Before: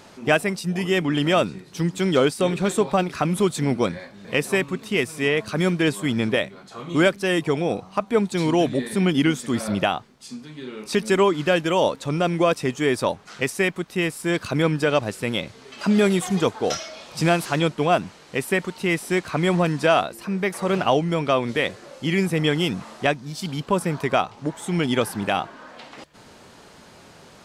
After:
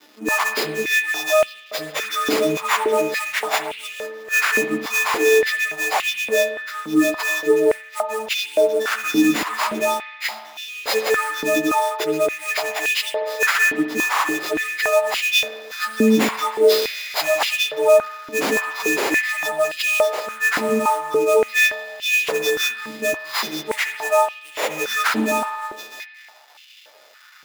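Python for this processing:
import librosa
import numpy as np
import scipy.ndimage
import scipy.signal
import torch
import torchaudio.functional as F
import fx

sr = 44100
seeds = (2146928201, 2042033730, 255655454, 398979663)

p1 = fx.freq_snap(x, sr, grid_st=6)
p2 = fx.level_steps(p1, sr, step_db=9)
p3 = p1 + F.gain(torch.from_numpy(p2), 1.0).numpy()
p4 = 10.0 ** (-12.5 / 20.0) * np.tanh(p3 / 10.0 ** (-12.5 / 20.0))
p5 = fx.spec_topn(p4, sr, count=8)
p6 = fx.sample_hold(p5, sr, seeds[0], rate_hz=9200.0, jitter_pct=20)
p7 = np.sign(p6) * np.maximum(np.abs(p6) - 10.0 ** (-38.5 / 20.0), 0.0)
p8 = fx.rev_spring(p7, sr, rt60_s=1.5, pass_ms=(59,), chirp_ms=40, drr_db=8.5)
p9 = fx.filter_held_highpass(p8, sr, hz=3.5, low_hz=270.0, high_hz=2800.0)
y = F.gain(torch.from_numpy(p9), -3.0).numpy()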